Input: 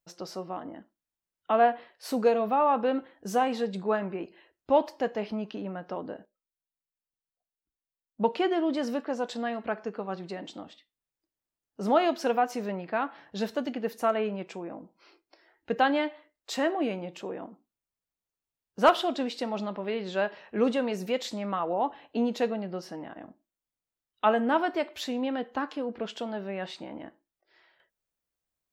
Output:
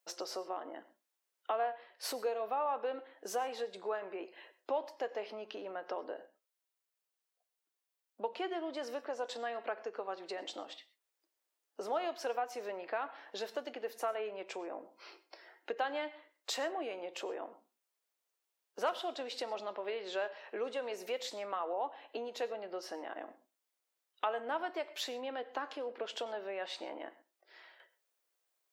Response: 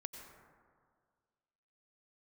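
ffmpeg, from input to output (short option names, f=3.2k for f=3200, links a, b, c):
-filter_complex "[0:a]acompressor=threshold=-43dB:ratio=3,highpass=f=380:w=0.5412,highpass=f=380:w=1.3066,asplit=2[a][b];[1:a]atrim=start_sample=2205,atrim=end_sample=6174[c];[b][c]afir=irnorm=-1:irlink=0,volume=-0.5dB[d];[a][d]amix=inputs=2:normalize=0,volume=1.5dB"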